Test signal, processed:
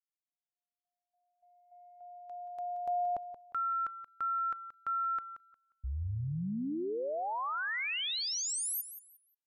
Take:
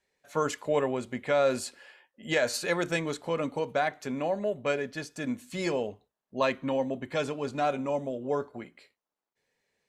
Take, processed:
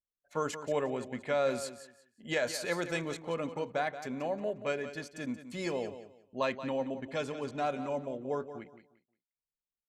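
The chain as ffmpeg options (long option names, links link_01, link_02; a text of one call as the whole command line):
ffmpeg -i in.wav -af "anlmdn=0.01,aecho=1:1:178|356|534:0.251|0.0578|0.0133,volume=-5dB" out.wav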